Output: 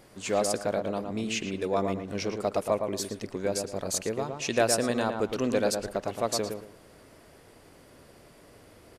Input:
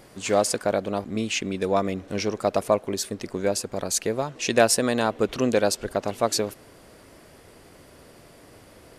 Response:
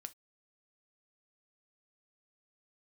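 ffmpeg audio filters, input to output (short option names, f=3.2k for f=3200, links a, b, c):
-filter_complex "[0:a]asplit=2[a][b];[b]asoftclip=type=tanh:threshold=-15.5dB,volume=-7.5dB[c];[a][c]amix=inputs=2:normalize=0,asplit=2[d][e];[e]adelay=113,lowpass=f=2k:p=1,volume=-5dB,asplit=2[f][g];[g]adelay=113,lowpass=f=2k:p=1,volume=0.28,asplit=2[h][i];[i]adelay=113,lowpass=f=2k:p=1,volume=0.28,asplit=2[j][k];[k]adelay=113,lowpass=f=2k:p=1,volume=0.28[l];[d][f][h][j][l]amix=inputs=5:normalize=0,volume=-8dB"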